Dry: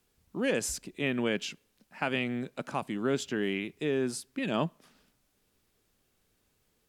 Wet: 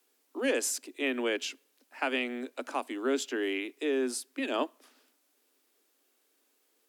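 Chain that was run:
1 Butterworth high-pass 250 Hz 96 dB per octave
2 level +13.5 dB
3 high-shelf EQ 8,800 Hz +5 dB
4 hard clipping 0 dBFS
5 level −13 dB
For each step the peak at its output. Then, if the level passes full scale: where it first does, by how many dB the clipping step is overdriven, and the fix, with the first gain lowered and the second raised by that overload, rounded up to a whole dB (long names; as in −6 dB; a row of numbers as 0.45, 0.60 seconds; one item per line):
−16.0, −2.5, −2.5, −2.5, −15.5 dBFS
no step passes full scale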